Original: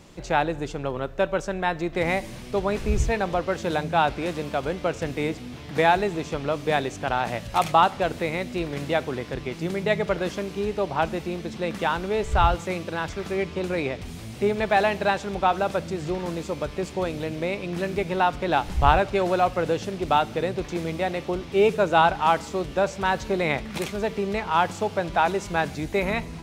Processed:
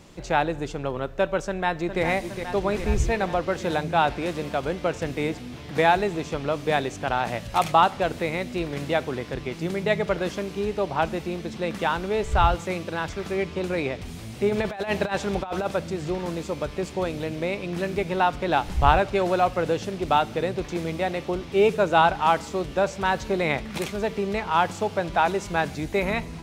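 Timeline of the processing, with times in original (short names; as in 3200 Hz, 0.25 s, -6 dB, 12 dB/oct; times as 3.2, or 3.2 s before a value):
1.47–2.02 echo throw 0.41 s, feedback 75%, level -8 dB
14.49–15.66 negative-ratio compressor -25 dBFS, ratio -0.5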